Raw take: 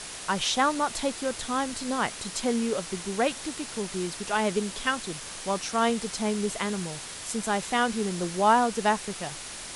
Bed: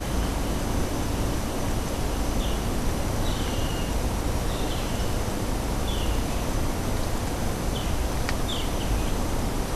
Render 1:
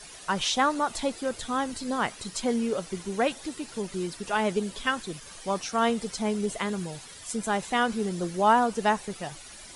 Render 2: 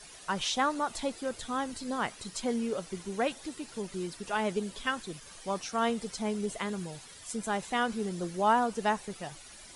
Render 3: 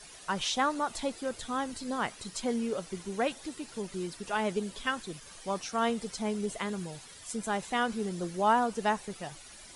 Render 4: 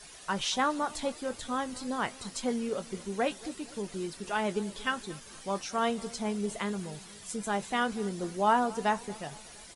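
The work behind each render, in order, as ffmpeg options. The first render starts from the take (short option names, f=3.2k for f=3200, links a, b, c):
-af "afftdn=nr=12:nf=-40"
-af "volume=-4.5dB"
-af anull
-filter_complex "[0:a]asplit=2[a][b];[b]adelay=20,volume=-12.5dB[c];[a][c]amix=inputs=2:normalize=0,asplit=2[d][e];[e]adelay=233,lowpass=f=2k:p=1,volume=-20dB,asplit=2[f][g];[g]adelay=233,lowpass=f=2k:p=1,volume=0.54,asplit=2[h][i];[i]adelay=233,lowpass=f=2k:p=1,volume=0.54,asplit=2[j][k];[k]adelay=233,lowpass=f=2k:p=1,volume=0.54[l];[d][f][h][j][l]amix=inputs=5:normalize=0"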